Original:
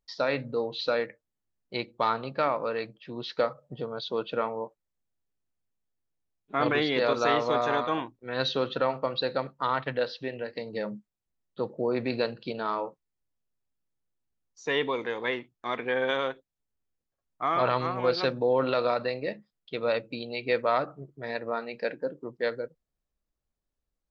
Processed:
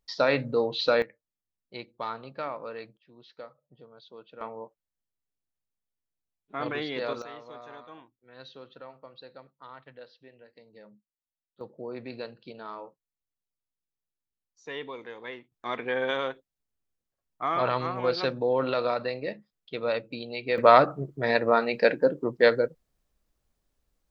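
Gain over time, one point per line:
+4 dB
from 1.02 s -8 dB
from 2.97 s -17.5 dB
from 4.41 s -6.5 dB
from 7.22 s -19 dB
from 11.61 s -10 dB
from 15.52 s -1 dB
from 20.58 s +9.5 dB

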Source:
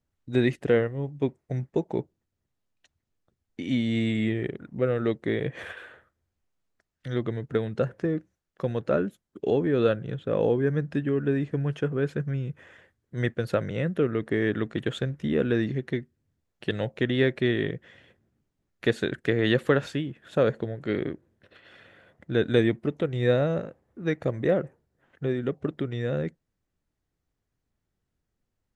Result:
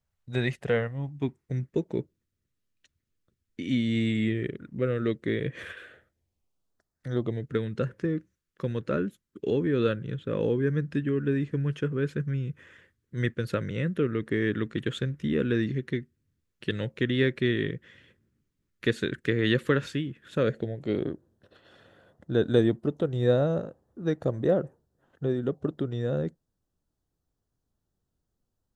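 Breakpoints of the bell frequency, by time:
bell -14.5 dB 0.65 oct
0.66 s 300 Hz
1.66 s 780 Hz
5.72 s 780 Hz
7.07 s 3100 Hz
7.53 s 720 Hz
20.38 s 720 Hz
21.09 s 2200 Hz

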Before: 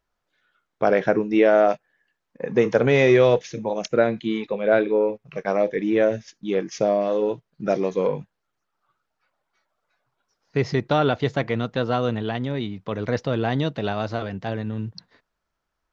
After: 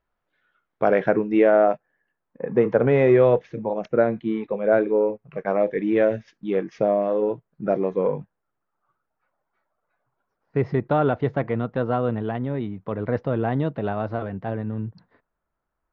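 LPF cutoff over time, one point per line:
1.22 s 2600 Hz
1.71 s 1500 Hz
5.22 s 1500 Hz
6.03 s 2800 Hz
7.33 s 1500 Hz

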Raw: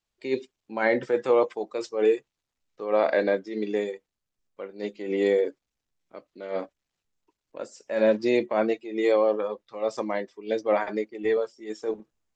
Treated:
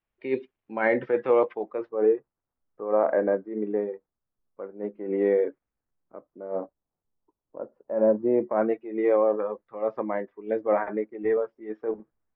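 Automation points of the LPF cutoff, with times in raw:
LPF 24 dB/oct
1.52 s 2600 Hz
1.98 s 1400 Hz
4.99 s 1400 Hz
5.48 s 2100 Hz
6.46 s 1100 Hz
8.26 s 1100 Hz
8.71 s 1800 Hz

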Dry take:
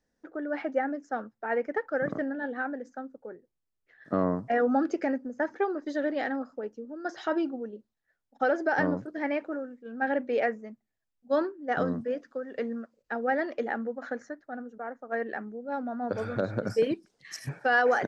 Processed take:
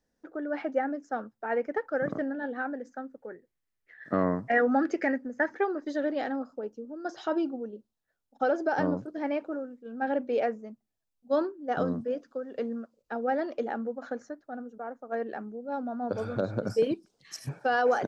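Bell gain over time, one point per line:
bell 1900 Hz 0.57 oct
2.7 s -3 dB
3.25 s +8.5 dB
5.37 s +8.5 dB
5.91 s -2 dB
6.5 s -10 dB

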